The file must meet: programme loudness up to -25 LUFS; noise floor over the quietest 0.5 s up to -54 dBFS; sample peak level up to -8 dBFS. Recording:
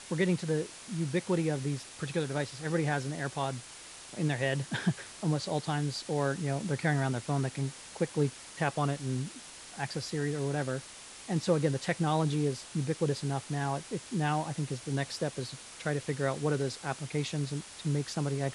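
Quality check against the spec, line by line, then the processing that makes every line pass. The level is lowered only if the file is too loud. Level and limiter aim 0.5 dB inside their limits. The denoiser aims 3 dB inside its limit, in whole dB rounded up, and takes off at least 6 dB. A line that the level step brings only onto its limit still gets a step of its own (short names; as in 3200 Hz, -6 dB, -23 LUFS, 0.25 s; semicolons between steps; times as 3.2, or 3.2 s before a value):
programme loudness -33.0 LUFS: OK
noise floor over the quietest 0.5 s -48 dBFS: fail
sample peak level -13.5 dBFS: OK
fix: denoiser 9 dB, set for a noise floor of -48 dBFS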